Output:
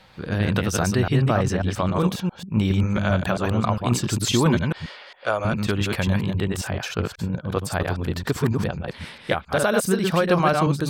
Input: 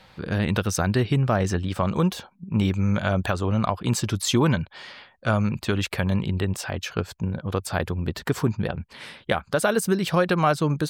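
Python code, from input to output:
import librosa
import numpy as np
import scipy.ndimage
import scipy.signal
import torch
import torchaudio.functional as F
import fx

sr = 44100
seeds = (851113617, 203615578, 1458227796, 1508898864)

y = fx.reverse_delay(x, sr, ms=135, wet_db=-3.0)
y = fx.low_shelf_res(y, sr, hz=300.0, db=-14.0, q=1.5, at=(4.89, 5.45))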